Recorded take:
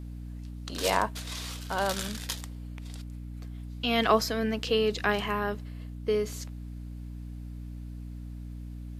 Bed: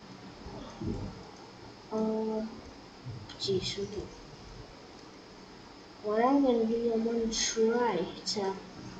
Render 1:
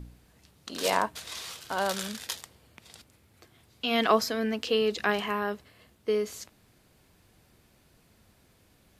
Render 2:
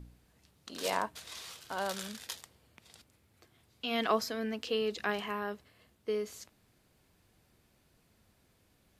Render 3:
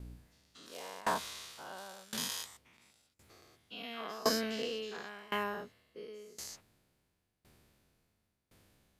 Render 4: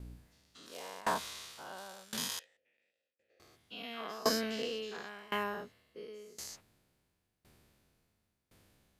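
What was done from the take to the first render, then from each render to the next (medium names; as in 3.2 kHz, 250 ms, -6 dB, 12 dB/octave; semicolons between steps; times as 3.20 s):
de-hum 60 Hz, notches 5
trim -6.5 dB
every event in the spectrogram widened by 240 ms; sawtooth tremolo in dB decaying 0.94 Hz, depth 24 dB
2.39–3.40 s: vowel filter e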